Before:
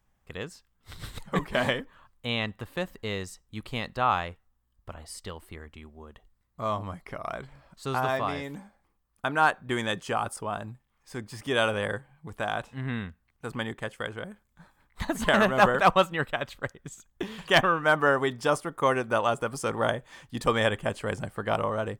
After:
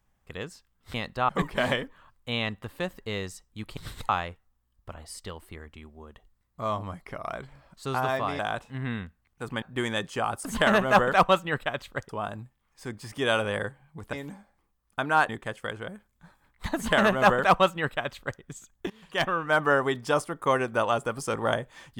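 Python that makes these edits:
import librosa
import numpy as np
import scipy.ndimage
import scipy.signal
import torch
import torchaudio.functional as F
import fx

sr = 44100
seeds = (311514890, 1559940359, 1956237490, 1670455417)

y = fx.edit(x, sr, fx.swap(start_s=0.94, length_s=0.32, other_s=3.74, other_length_s=0.35),
    fx.swap(start_s=8.39, length_s=1.16, other_s=12.42, other_length_s=1.23),
    fx.duplicate(start_s=15.12, length_s=1.64, to_s=10.38),
    fx.fade_in_from(start_s=17.26, length_s=0.74, floor_db=-18.0), tone=tone)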